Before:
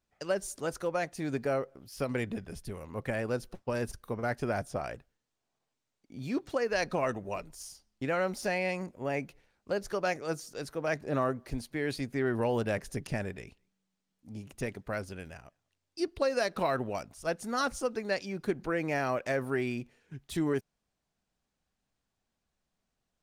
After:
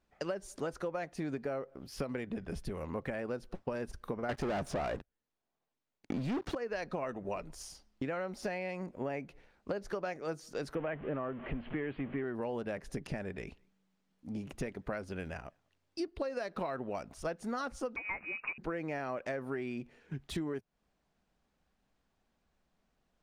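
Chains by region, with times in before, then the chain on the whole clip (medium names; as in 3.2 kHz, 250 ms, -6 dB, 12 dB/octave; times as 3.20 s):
4.29–6.55 s: waveshaping leveller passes 5 + loudspeaker Doppler distortion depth 0.1 ms
10.75–12.24 s: jump at every zero crossing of -38 dBFS + Chebyshev low-pass 3.1 kHz, order 5
17.96–18.58 s: CVSD coder 32 kbps + frequency inversion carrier 2.7 kHz
whole clip: compression 12:1, threshold -40 dBFS; low-pass 2.5 kHz 6 dB/octave; peaking EQ 110 Hz -9 dB 0.37 oct; trim +7 dB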